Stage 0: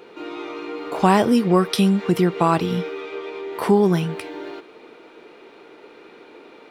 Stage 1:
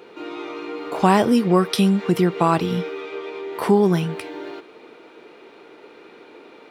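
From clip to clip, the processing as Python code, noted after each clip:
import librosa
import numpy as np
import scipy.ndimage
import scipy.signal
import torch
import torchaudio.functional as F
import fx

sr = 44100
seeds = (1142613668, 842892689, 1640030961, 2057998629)

y = scipy.signal.sosfilt(scipy.signal.butter(2, 42.0, 'highpass', fs=sr, output='sos'), x)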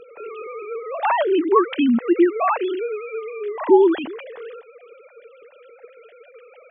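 y = fx.sine_speech(x, sr)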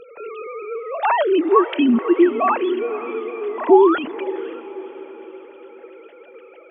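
y = fx.echo_diffused(x, sr, ms=505, feedback_pct=52, wet_db=-14.5)
y = fx.spec_paint(y, sr, seeds[0], shape='rise', start_s=3.69, length_s=0.29, low_hz=660.0, high_hz=1500.0, level_db=-24.0)
y = y * 10.0 ** (1.5 / 20.0)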